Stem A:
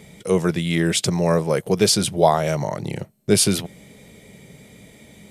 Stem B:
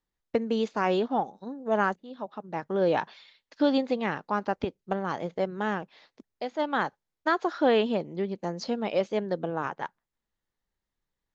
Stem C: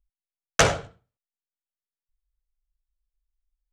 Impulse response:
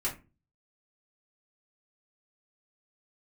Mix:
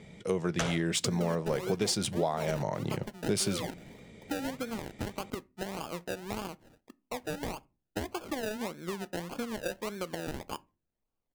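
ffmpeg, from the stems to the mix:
-filter_complex "[0:a]equalizer=frequency=7400:width=0.96:gain=4,adynamicsmooth=sensitivity=2:basefreq=4300,volume=-5.5dB,asplit=2[link_01][link_02];[link_02]volume=-22.5dB[link_03];[1:a]acompressor=threshold=-30dB:ratio=5,acrusher=samples=32:mix=1:aa=0.000001:lfo=1:lforange=19.2:lforate=1.7,adelay=700,volume=-3dB,asplit=2[link_04][link_05];[link_05]volume=-20dB[link_06];[2:a]volume=-9dB[link_07];[3:a]atrim=start_sample=2205[link_08];[link_03][link_06]amix=inputs=2:normalize=0[link_09];[link_09][link_08]afir=irnorm=-1:irlink=0[link_10];[link_01][link_04][link_07][link_10]amix=inputs=4:normalize=0,acompressor=threshold=-26dB:ratio=6"

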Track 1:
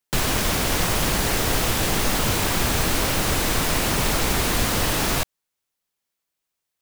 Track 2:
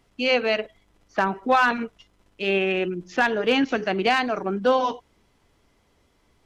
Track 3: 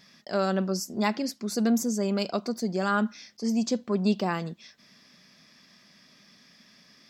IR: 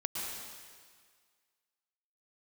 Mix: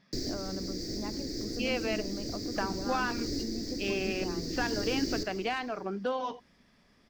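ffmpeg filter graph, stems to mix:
-filter_complex "[0:a]firequalizer=gain_entry='entry(190,0);entry(290,15);entry(1000,-29);entry(1900,-5);entry(2900,-22);entry(4700,14);entry(9800,-20);entry(14000,-9)':delay=0.05:min_phase=1,acrossover=split=330[link_01][link_02];[link_02]acompressor=threshold=-20dB:ratio=6[link_03];[link_01][link_03]amix=inputs=2:normalize=0,volume=-17dB,asplit=2[link_04][link_05];[link_05]volume=-8.5dB[link_06];[1:a]acompressor=threshold=-27dB:ratio=2,adelay=1400,volume=-6dB[link_07];[2:a]lowpass=frequency=1400:poles=1,acompressor=threshold=-33dB:ratio=6,volume=-4.5dB,asplit=2[link_08][link_09];[link_09]apad=whole_len=304881[link_10];[link_04][link_10]sidechaincompress=threshold=-45dB:ratio=8:attack=42:release=467[link_11];[3:a]atrim=start_sample=2205[link_12];[link_06][link_12]afir=irnorm=-1:irlink=0[link_13];[link_11][link_07][link_08][link_13]amix=inputs=4:normalize=0"

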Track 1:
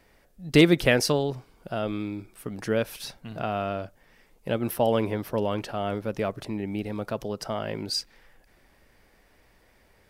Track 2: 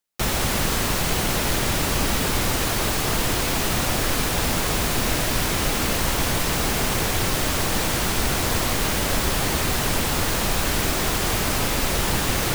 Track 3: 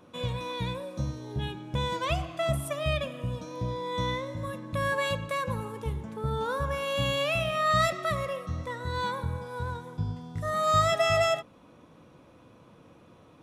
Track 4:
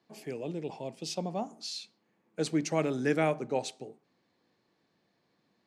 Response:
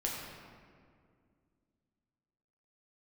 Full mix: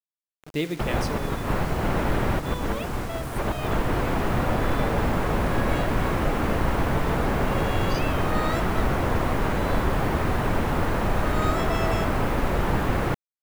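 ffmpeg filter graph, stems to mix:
-filter_complex "[0:a]afwtdn=0.02,volume=-12.5dB,asplit=2[link_01][link_02];[link_02]volume=-11.5dB[link_03];[1:a]lowpass=1500,adelay=600,volume=1dB[link_04];[2:a]adelay=700,volume=-7.5dB[link_05];[3:a]acompressor=threshold=-32dB:ratio=2.5,volume=-19dB,asplit=2[link_06][link_07];[link_07]apad=whole_len=579646[link_08];[link_04][link_08]sidechaincompress=threshold=-58dB:ratio=8:attack=16:release=119[link_09];[4:a]atrim=start_sample=2205[link_10];[link_03][link_10]afir=irnorm=-1:irlink=0[link_11];[link_01][link_09][link_05][link_06][link_11]amix=inputs=5:normalize=0,acrusher=bits=6:mix=0:aa=0.000001"

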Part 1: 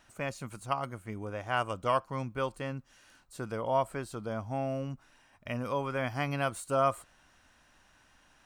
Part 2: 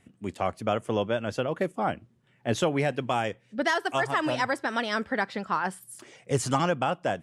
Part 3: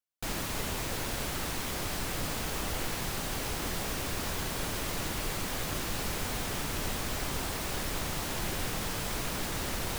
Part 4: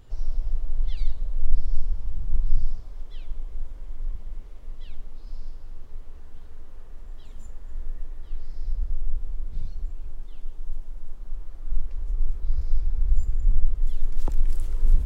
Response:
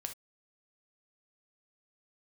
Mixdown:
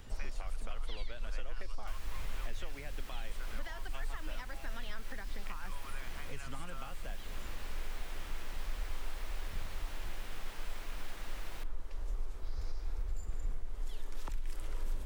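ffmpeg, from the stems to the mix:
-filter_complex "[0:a]highpass=1100,acompressor=threshold=-39dB:ratio=6,volume=-3.5dB[link_01];[1:a]volume=-3.5dB[link_02];[2:a]adelay=1650,volume=-11dB,asplit=2[link_03][link_04];[link_04]volume=-9.5dB[link_05];[3:a]volume=1.5dB,asplit=2[link_06][link_07];[link_07]volume=-4.5dB[link_08];[link_02][link_03]amix=inputs=2:normalize=0,acompressor=threshold=-42dB:ratio=2.5,volume=0dB[link_09];[link_01][link_06]amix=inputs=2:normalize=0,alimiter=limit=-13dB:level=0:latency=1:release=184,volume=0dB[link_10];[4:a]atrim=start_sample=2205[link_11];[link_05][link_08]amix=inputs=2:normalize=0[link_12];[link_12][link_11]afir=irnorm=-1:irlink=0[link_13];[link_09][link_10][link_13]amix=inputs=3:normalize=0,lowshelf=frequency=480:gain=-6.5,acrossover=split=260|1500|3400[link_14][link_15][link_16][link_17];[link_14]acompressor=threshold=-33dB:ratio=4[link_18];[link_15]acompressor=threshold=-52dB:ratio=4[link_19];[link_16]acompressor=threshold=-49dB:ratio=4[link_20];[link_17]acompressor=threshold=-58dB:ratio=4[link_21];[link_18][link_19][link_20][link_21]amix=inputs=4:normalize=0"

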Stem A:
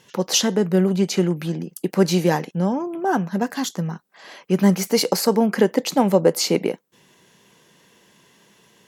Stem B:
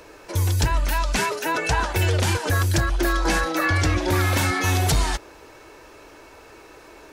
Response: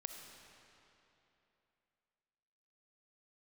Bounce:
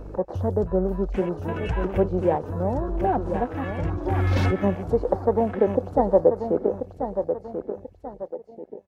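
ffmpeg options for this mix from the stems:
-filter_complex "[0:a]bandpass=frequency=650:width_type=q:width=2:csg=0,volume=-1.5dB,asplit=3[link_01][link_02][link_03];[link_02]volume=-8dB[link_04];[1:a]acompressor=threshold=-22dB:ratio=20,aeval=exprs='val(0)+0.00501*(sin(2*PI*50*n/s)+sin(2*PI*2*50*n/s)/2+sin(2*PI*3*50*n/s)/3+sin(2*PI*4*50*n/s)/4+sin(2*PI*5*50*n/s)/5)':channel_layout=same,volume=-0.5dB,asplit=2[link_05][link_06];[link_06]volume=-17.5dB[link_07];[link_03]apad=whole_len=314396[link_08];[link_05][link_08]sidechaincompress=threshold=-40dB:ratio=6:attack=49:release=1000[link_09];[link_04][link_07]amix=inputs=2:normalize=0,aecho=0:1:1037|2074|3111|4148|5185:1|0.39|0.152|0.0593|0.0231[link_10];[link_01][link_09][link_10]amix=inputs=3:normalize=0,afwtdn=0.01,lowshelf=frequency=400:gain=10"

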